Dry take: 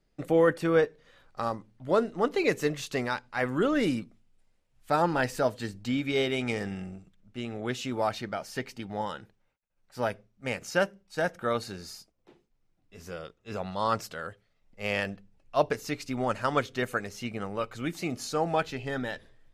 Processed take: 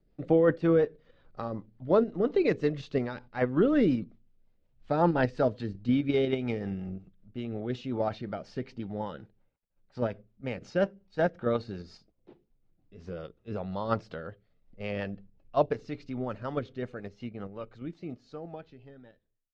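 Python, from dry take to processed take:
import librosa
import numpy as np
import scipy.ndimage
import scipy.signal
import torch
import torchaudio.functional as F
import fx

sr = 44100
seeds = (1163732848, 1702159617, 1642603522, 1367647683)

p1 = fx.fade_out_tail(x, sr, length_s=4.72)
p2 = scipy.signal.sosfilt(scipy.signal.butter(4, 4200.0, 'lowpass', fs=sr, output='sos'), p1)
p3 = fx.peak_eq(p2, sr, hz=2400.0, db=-9.5, octaves=2.8)
p4 = fx.level_steps(p3, sr, step_db=15)
p5 = p3 + F.gain(torch.from_numpy(p4), 2.0).numpy()
y = fx.rotary(p5, sr, hz=5.5)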